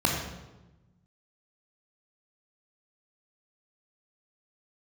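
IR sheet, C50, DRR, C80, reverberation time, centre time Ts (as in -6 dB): 2.5 dB, -1.0 dB, 4.5 dB, 1.1 s, 53 ms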